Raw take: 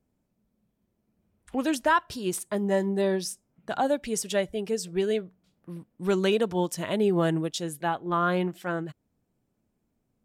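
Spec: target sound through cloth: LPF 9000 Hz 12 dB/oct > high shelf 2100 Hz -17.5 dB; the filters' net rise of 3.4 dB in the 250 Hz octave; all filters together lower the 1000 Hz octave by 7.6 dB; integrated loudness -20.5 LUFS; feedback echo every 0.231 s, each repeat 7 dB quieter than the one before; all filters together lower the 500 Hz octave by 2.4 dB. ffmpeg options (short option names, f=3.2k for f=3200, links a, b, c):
-af "lowpass=9k,equalizer=f=250:t=o:g=7,equalizer=f=500:t=o:g=-4,equalizer=f=1k:t=o:g=-4.5,highshelf=f=2.1k:g=-17.5,aecho=1:1:231|462|693|924|1155:0.447|0.201|0.0905|0.0407|0.0183,volume=6.5dB"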